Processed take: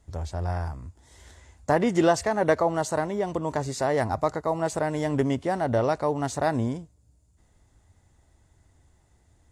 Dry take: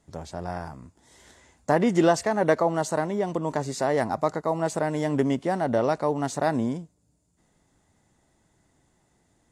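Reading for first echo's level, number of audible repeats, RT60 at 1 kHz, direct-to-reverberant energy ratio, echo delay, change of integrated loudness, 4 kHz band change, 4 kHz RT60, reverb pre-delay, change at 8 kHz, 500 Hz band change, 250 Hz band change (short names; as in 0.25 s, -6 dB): none, none, none, none, none, -0.5 dB, 0.0 dB, none, none, 0.0 dB, -0.5 dB, -1.5 dB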